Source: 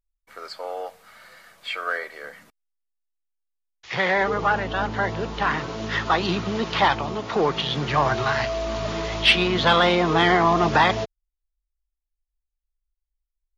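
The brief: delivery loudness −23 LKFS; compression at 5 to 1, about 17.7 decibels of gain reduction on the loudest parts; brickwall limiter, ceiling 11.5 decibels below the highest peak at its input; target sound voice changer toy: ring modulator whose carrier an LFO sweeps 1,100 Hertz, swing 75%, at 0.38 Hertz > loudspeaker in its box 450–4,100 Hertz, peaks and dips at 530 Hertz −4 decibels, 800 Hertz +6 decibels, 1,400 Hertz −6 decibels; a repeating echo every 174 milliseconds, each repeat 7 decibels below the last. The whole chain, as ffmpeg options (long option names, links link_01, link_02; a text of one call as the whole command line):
ffmpeg -i in.wav -af "acompressor=threshold=-34dB:ratio=5,alimiter=level_in=8.5dB:limit=-24dB:level=0:latency=1,volume=-8.5dB,aecho=1:1:174|348|522|696|870:0.447|0.201|0.0905|0.0407|0.0183,aeval=exprs='val(0)*sin(2*PI*1100*n/s+1100*0.75/0.38*sin(2*PI*0.38*n/s))':channel_layout=same,highpass=450,equalizer=frequency=530:width_type=q:width=4:gain=-4,equalizer=frequency=800:width_type=q:width=4:gain=6,equalizer=frequency=1400:width_type=q:width=4:gain=-6,lowpass=frequency=4100:width=0.5412,lowpass=frequency=4100:width=1.3066,volume=21dB" out.wav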